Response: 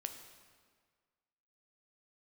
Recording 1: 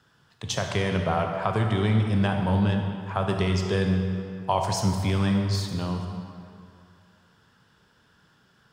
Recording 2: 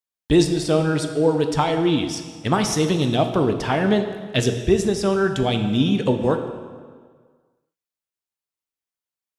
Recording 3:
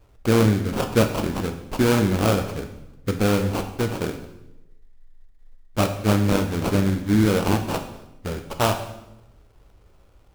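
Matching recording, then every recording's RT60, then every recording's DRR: 2; 2.5 s, 1.7 s, 0.90 s; 3.0 dB, 6.0 dB, 6.0 dB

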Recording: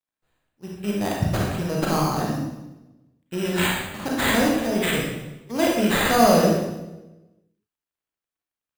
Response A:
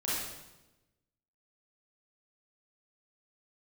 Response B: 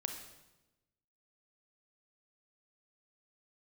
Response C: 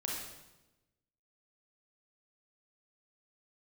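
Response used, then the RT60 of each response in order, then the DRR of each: C; 1.0 s, 1.0 s, 1.0 s; -9.0 dB, 4.5 dB, -3.0 dB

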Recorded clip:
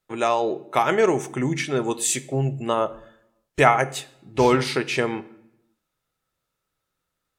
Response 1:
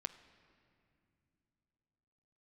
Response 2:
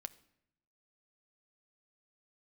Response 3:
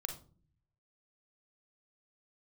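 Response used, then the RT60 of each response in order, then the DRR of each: 2; no single decay rate, 0.75 s, 0.45 s; 9.5 dB, 13.0 dB, 5.0 dB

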